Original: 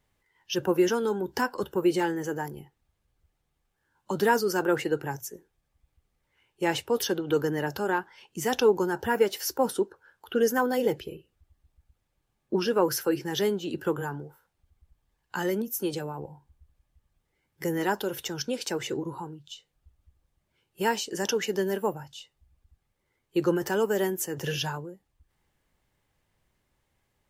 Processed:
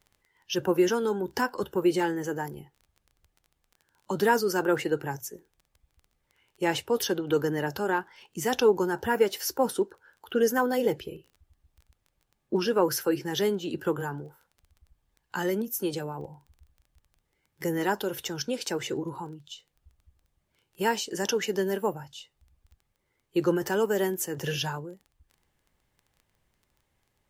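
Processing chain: crackle 15 per s -44 dBFS

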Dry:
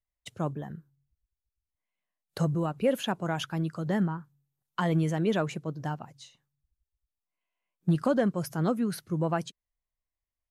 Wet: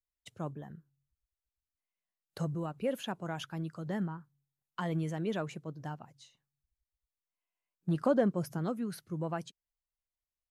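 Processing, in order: 7.90–8.57 s: peaking EQ 830 Hz -> 200 Hz +6.5 dB 2.9 oct; trim -7.5 dB

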